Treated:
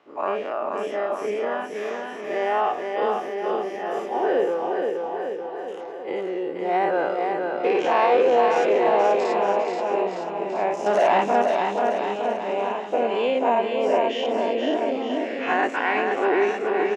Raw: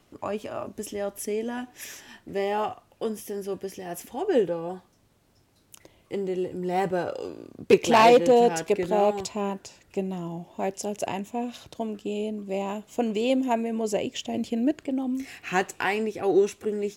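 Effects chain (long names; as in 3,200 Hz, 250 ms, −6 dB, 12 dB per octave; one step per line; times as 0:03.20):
every bin's largest magnitude spread in time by 120 ms
brickwall limiter −13 dBFS, peak gain reduction 11 dB
0:10.86–0:11.42: leveller curve on the samples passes 3
band-pass filter 470–2,100 Hz
bouncing-ball delay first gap 480 ms, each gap 0.9×, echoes 5
level +3 dB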